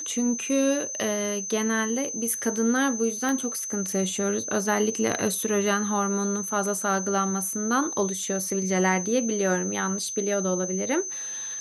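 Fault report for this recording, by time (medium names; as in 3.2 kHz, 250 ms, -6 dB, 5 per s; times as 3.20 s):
whine 6.2 kHz -31 dBFS
3.29 s: pop -15 dBFS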